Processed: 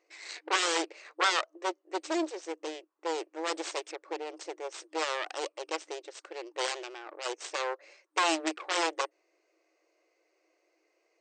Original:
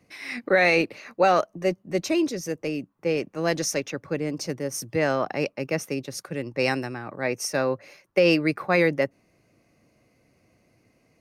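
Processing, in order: self-modulated delay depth 0.95 ms; FFT band-pass 310–8600 Hz; gain -6.5 dB

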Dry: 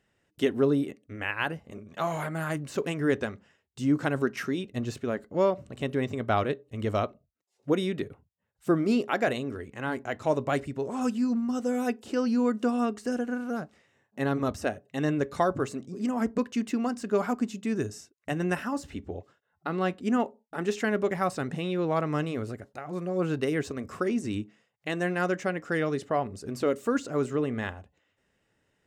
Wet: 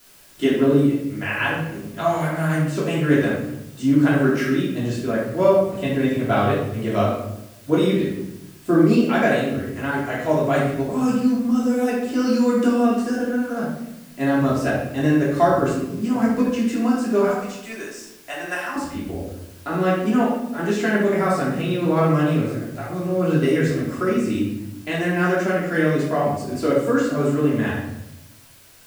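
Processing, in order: 12.19–12.67 high shelf 4300 Hz +10.5 dB; 17.28–18.76 HPF 710 Hz 12 dB/oct; added noise white -56 dBFS; shoebox room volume 260 m³, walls mixed, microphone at 3 m; gain -1.5 dB

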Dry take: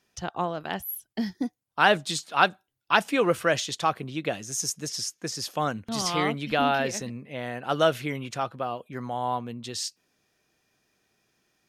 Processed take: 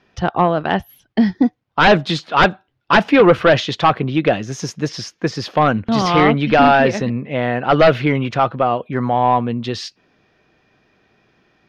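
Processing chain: sine folder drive 12 dB, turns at -4 dBFS; air absorption 280 m

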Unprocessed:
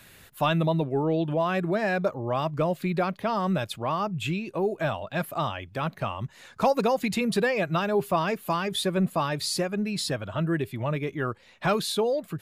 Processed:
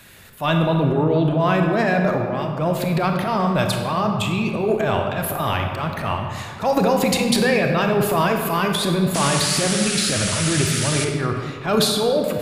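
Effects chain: 2.14–2.59 compressor, threshold -29 dBFS, peak gain reduction 7 dB; transient shaper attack -8 dB, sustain +10 dB; 9.14–11.05 painted sound noise 1200–11000 Hz -31 dBFS; reverb RT60 2.0 s, pre-delay 27 ms, DRR 3 dB; gain +5 dB

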